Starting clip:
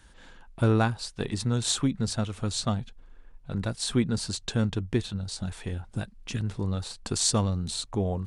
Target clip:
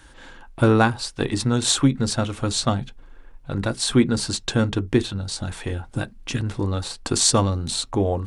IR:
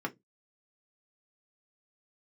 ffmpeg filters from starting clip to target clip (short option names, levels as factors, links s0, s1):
-filter_complex "[0:a]asplit=2[s0][s1];[1:a]atrim=start_sample=2205,atrim=end_sample=3969[s2];[s1][s2]afir=irnorm=-1:irlink=0,volume=0.282[s3];[s0][s3]amix=inputs=2:normalize=0,volume=2"